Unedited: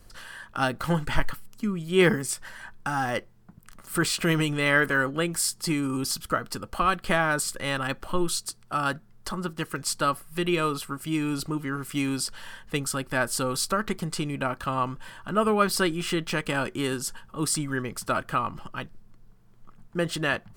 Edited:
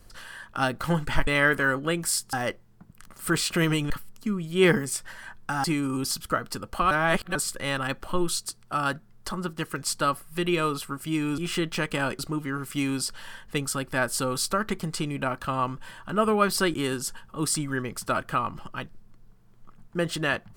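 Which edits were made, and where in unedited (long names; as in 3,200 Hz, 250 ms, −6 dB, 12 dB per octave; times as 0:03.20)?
0:01.27–0:03.01: swap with 0:04.58–0:05.64
0:06.91–0:07.35: reverse
0:15.93–0:16.74: move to 0:11.38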